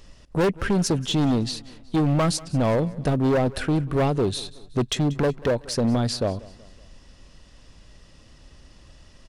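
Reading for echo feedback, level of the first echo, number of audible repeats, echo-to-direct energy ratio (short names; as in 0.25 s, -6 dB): 45%, -21.0 dB, 3, -20.0 dB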